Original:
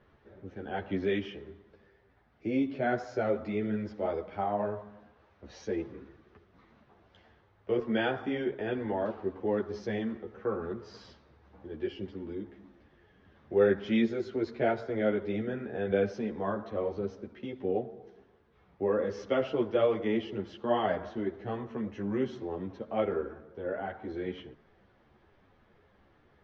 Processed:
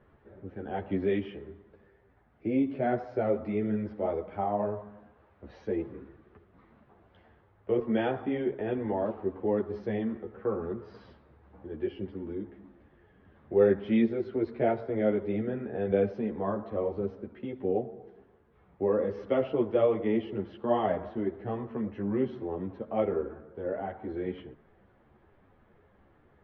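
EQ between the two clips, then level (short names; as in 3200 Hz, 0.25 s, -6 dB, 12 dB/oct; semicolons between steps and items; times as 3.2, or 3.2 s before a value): high shelf 3800 Hz -9 dB; dynamic EQ 1500 Hz, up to -6 dB, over -54 dBFS, Q 3.6; air absorption 230 m; +2.5 dB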